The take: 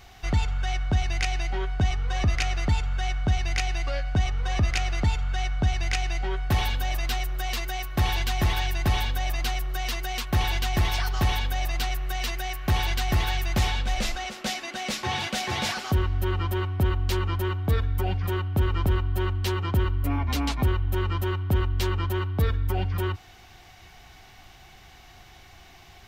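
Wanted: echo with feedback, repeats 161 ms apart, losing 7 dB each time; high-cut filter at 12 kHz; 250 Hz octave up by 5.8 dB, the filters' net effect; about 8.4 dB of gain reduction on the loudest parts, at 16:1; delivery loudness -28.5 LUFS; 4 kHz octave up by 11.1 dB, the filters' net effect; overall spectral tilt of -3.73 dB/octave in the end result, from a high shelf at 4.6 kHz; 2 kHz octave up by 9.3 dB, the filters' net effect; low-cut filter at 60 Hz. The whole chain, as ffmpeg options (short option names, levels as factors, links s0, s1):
-af "highpass=60,lowpass=12000,equalizer=f=250:t=o:g=8,equalizer=f=2000:t=o:g=7.5,equalizer=f=4000:t=o:g=8,highshelf=f=4600:g=7.5,acompressor=threshold=0.0562:ratio=16,aecho=1:1:161|322|483|644|805:0.447|0.201|0.0905|0.0407|0.0183,volume=0.891"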